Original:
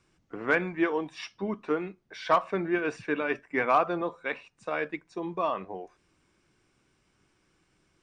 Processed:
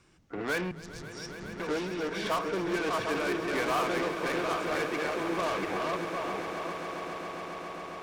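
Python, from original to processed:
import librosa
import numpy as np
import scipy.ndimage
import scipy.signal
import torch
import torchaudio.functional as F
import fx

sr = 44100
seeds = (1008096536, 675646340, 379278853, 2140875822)

y = fx.reverse_delay_fb(x, sr, ms=378, feedback_pct=46, wet_db=-4.5)
y = 10.0 ** (-26.0 / 20.0) * np.tanh(y / 10.0 ** (-26.0 / 20.0))
y = fx.cheby2_bandstop(y, sr, low_hz=400.0, high_hz=1900.0, order=4, stop_db=60, at=(0.71, 1.6))
y = fx.cheby_harmonics(y, sr, harmonics=(5,), levels_db=(-15,), full_scale_db=-26.0)
y = fx.echo_swell(y, sr, ms=136, loudest=8, wet_db=-15.0)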